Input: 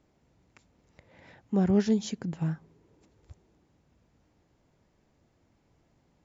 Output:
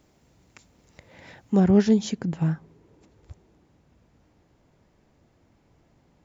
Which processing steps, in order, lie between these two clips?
high shelf 4000 Hz +8 dB, from 1.6 s -3 dB; gain +6 dB

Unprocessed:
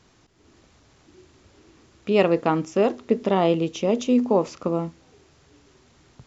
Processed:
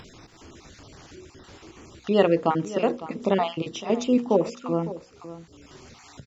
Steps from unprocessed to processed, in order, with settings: random spectral dropouts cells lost 27%; notches 60/120/180/240/300/360/420/480/540 Hz; on a send: echo 0.556 s -15 dB; on the sum: upward compressor, threshold -36 dBFS

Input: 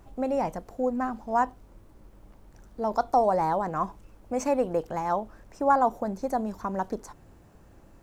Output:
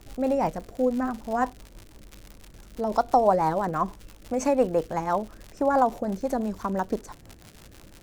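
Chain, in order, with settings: crackle 140/s -36 dBFS; rotary speaker horn 6 Hz; gain +5 dB

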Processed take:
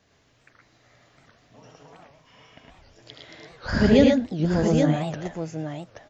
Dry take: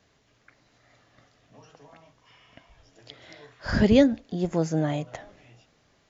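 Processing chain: tapped delay 74/107/119/820 ms -6/-3.5/-6/-6.5 dB; record warp 78 rpm, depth 250 cents

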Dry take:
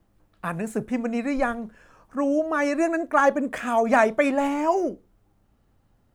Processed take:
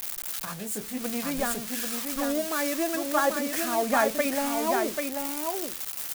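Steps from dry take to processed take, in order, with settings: switching spikes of -15 dBFS; echo 0.789 s -5 dB; 0.45–1.01 detuned doubles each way 53 cents; gain -6 dB

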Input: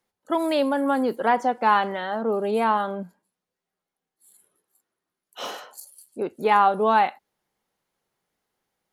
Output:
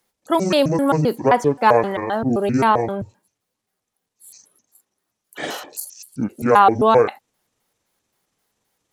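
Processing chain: trilling pitch shifter -9.5 st, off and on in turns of 0.131 s; high shelf 4400 Hz +7.5 dB; gain +5.5 dB

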